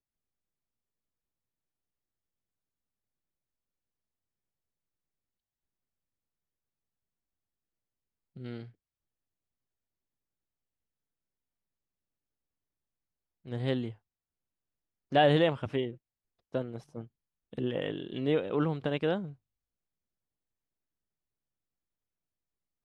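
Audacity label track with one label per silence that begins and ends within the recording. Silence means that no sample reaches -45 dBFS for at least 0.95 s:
8.690000	13.460000	silence
13.930000	15.120000	silence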